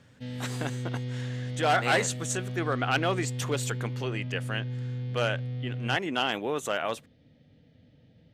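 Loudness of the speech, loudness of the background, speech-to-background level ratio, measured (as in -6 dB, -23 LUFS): -30.0 LUFS, -35.0 LUFS, 5.0 dB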